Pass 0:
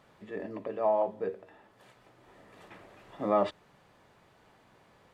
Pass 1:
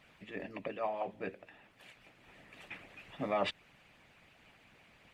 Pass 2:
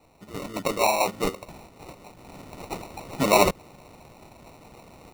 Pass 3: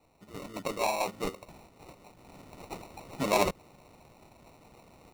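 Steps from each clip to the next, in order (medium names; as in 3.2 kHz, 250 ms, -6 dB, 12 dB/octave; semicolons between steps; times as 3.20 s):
fifteen-band graphic EQ 160 Hz +6 dB, 400 Hz -8 dB, 1 kHz -6 dB, 2.5 kHz +11 dB; harmonic-percussive split harmonic -15 dB; trim +3.5 dB
level rider gain up to 10.5 dB; sample-and-hold 27×; trim +4 dB
tracing distortion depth 0.025 ms; trim -7.5 dB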